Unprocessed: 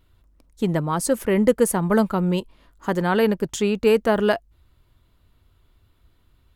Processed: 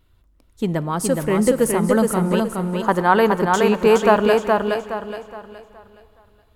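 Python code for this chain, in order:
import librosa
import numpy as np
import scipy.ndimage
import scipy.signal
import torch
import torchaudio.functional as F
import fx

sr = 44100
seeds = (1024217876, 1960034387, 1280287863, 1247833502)

y = fx.peak_eq(x, sr, hz=1000.0, db=10.5, octaves=1.3, at=(2.2, 4.2))
y = fx.echo_feedback(y, sr, ms=419, feedback_pct=35, wet_db=-3.5)
y = fx.rev_plate(y, sr, seeds[0], rt60_s=3.1, hf_ratio=0.95, predelay_ms=0, drr_db=16.0)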